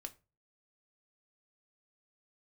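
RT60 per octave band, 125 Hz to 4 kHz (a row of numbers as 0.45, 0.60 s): 0.50, 0.35, 0.35, 0.30, 0.25, 0.20 s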